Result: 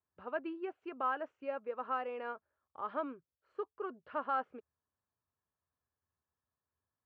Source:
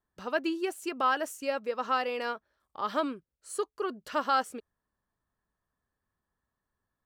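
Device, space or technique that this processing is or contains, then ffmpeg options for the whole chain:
bass cabinet: -af "highpass=76,highpass=66,equalizer=f=81:t=q:w=4:g=10,equalizer=f=200:t=q:w=4:g=-7,equalizer=f=320:t=q:w=4:g=-3,equalizer=f=1.9k:t=q:w=4:g=-6,lowpass=f=2.2k:w=0.5412,lowpass=f=2.2k:w=1.3066,volume=-7dB"

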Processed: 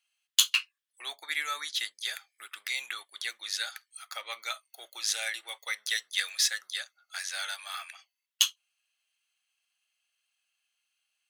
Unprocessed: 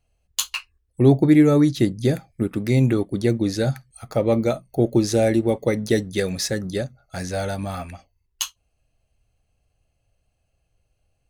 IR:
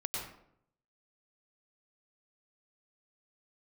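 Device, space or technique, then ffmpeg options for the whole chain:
headphones lying on a table: -af "highpass=f=1.3k:w=0.5412,highpass=f=1.3k:w=1.3066,equalizer=f=3.3k:t=o:w=0.39:g=7.5"

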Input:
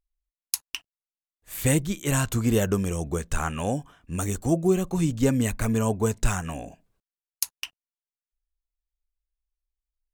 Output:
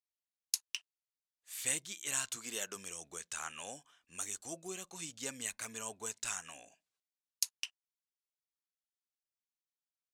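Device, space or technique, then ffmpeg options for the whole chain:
piezo pickup straight into a mixer: -filter_complex "[0:a]asettb=1/sr,asplit=3[a][b][c];[a]atrim=end=2.364[d];[b]atrim=start=2.36:end=2.76,asetpts=PTS-STARTPTS,afade=t=in:d=0.004:c=qsin,afade=t=out:st=0.396:d=0.004:c=qsin,highpass=180[e];[c]atrim=start=2.756[f];[d][e]acrossfade=d=0.004:c1=hsin:c2=qsin[g];[g][f]acrossfade=d=0.004:c1=qsin:c2=hsin,lowpass=6k,aderivative,volume=1.5dB"

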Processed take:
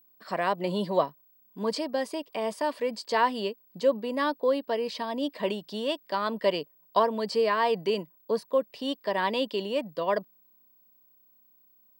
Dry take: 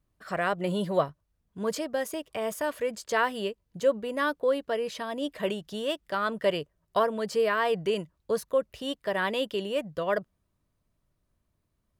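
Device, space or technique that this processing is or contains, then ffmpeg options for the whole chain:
old television with a line whistle: -filter_complex "[0:a]asettb=1/sr,asplit=3[a][b][c];[a]atrim=end=7.964[d];[b]atrim=start=7.96:end=8.52,asetpts=PTS-STARTPTS,afade=t=in:d=0.004:c=qsin,afade=t=out:st=0.556:d=0.004:c=qsin,equalizer=f=6.1k:w=0.38:g=-5[e];[c]atrim=start=8.516[f];[d][e]acrossfade=d=0.004:c1=hsin:c2=qsin[g];[g][f]acrossfade=d=0.004:c1=qsin:c2=hsin,highpass=f=180:w=0.5412,highpass=f=180:w=1.3066,equalizer=f=250:t=q:w=4:g=5,equalizer=f=960:t=q:w=4:g=7,equalizer=f=1.4k:t=q:w=4:g=-8,equalizer=f=4.6k:t=q:w=4:g=9,equalizer=f=6.7k:t=q:w=4:g=-9,lowpass=f=8.9k:w=0.5412,lowpass=f=8.9k:w=1.3066,aeval=exprs='val(0)+0.00112*sin(2*PI*15734*n/s)':c=same"

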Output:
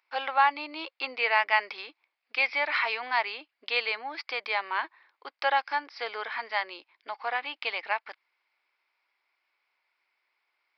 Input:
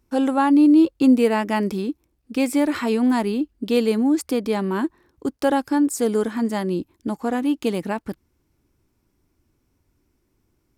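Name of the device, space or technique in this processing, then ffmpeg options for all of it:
musical greeting card: -af "aresample=11025,aresample=44100,highpass=f=760:w=0.5412,highpass=f=760:w=1.3066,equalizer=f=2.2k:t=o:w=0.48:g=10.5"

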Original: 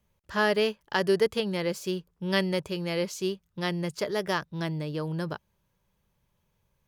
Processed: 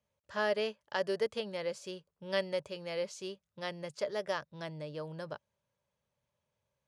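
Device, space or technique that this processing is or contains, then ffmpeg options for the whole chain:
car door speaker: -af "highpass=100,equalizer=f=180:t=q:w=4:g=-8,equalizer=f=340:t=q:w=4:g=-7,equalizer=f=580:t=q:w=4:g=8,lowpass=f=9.5k:w=0.5412,lowpass=f=9.5k:w=1.3066,volume=-8.5dB"

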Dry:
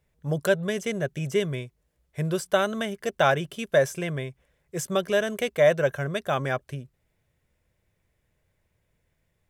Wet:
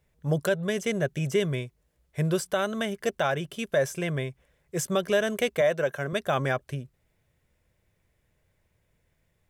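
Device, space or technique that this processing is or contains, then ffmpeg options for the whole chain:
stacked limiters: -filter_complex "[0:a]alimiter=limit=-13.5dB:level=0:latency=1:release=460,alimiter=limit=-16.5dB:level=0:latency=1:release=74,asettb=1/sr,asplit=3[a][b][c];[a]atrim=end=5.614[d];[b]atrim=start=5.61:end=6.13,asetpts=PTS-STARTPTS,afade=t=in:d=0.004:c=qsin,afade=t=out:st=0.516:d=0.004:c=qsin,highpass=170[e];[c]atrim=start=6.126[f];[d][e]acrossfade=d=0.004:c1=hsin:c2=qsin[g];[g][f]acrossfade=d=0.004:c1=qsin:c2=hsin,volume=1.5dB"

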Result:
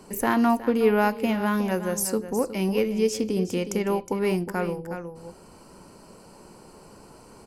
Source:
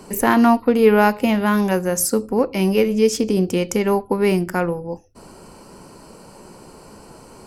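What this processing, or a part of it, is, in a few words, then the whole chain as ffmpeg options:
ducked delay: -filter_complex "[0:a]asplit=3[a][b][c];[b]adelay=365,volume=-6.5dB[d];[c]apad=whole_len=345438[e];[d][e]sidechaincompress=threshold=-18dB:ratio=8:attack=22:release=1280[f];[a][f]amix=inputs=2:normalize=0,volume=-7dB"

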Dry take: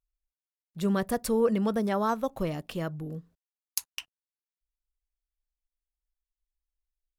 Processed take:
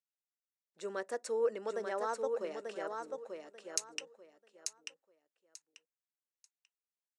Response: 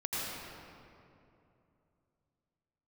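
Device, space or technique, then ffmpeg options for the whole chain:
phone speaker on a table: -filter_complex "[0:a]lowpass=9.8k,asettb=1/sr,asplit=3[a][b][c];[a]atrim=end=3.184[d];[b]atrim=start=3.18:end=3.99,asetpts=PTS-STARTPTS,afade=t=in:d=0.004:c=qsin,afade=t=out:st=0.806:d=0.004:c=qsin,tiltshelf=f=750:g=-8[e];[c]atrim=start=3.986[f];[d][e]acrossfade=d=0.004:c1=hsin:c2=qsin[g];[g][f]acrossfade=d=0.004:c1=qsin:c2=hsin,highpass=f=400:w=0.5412,highpass=f=400:w=1.3066,equalizer=f=720:t=q:w=4:g=-6,equalizer=f=1.1k:t=q:w=4:g=-7,equalizer=f=2.3k:t=q:w=4:g=-4,equalizer=f=3.3k:t=q:w=4:g=-10,equalizer=f=4.7k:t=q:w=4:g=-6,equalizer=f=8.1k:t=q:w=4:g=3,lowpass=f=8.1k:w=0.5412,lowpass=f=8.1k:w=1.3066,aecho=1:1:889|1778|2667:0.562|0.118|0.0248,volume=-4.5dB"

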